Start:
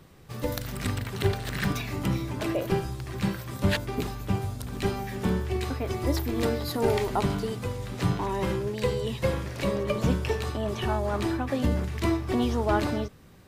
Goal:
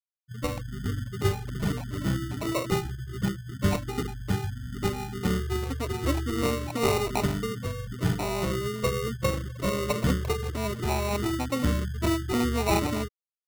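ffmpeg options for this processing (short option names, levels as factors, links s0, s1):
-af "afftfilt=real='re*gte(hypot(re,im),0.0562)':imag='im*gte(hypot(re,im),0.0562)':win_size=1024:overlap=0.75,acrusher=samples=27:mix=1:aa=0.000001"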